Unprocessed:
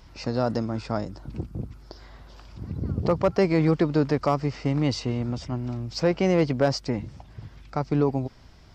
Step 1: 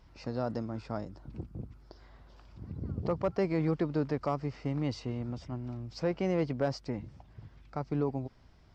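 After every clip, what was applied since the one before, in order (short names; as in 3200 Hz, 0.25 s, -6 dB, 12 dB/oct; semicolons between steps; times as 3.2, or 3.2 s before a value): high shelf 3500 Hz -7 dB; gain -8.5 dB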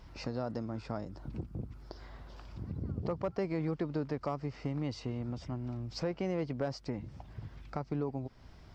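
compressor 2:1, threshold -45 dBFS, peak gain reduction 11 dB; gain +6 dB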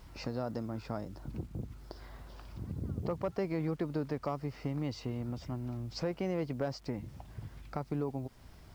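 bit-crush 11-bit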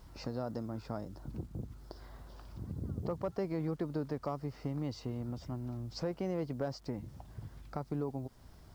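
bell 2400 Hz -6 dB 0.85 oct; gain -1.5 dB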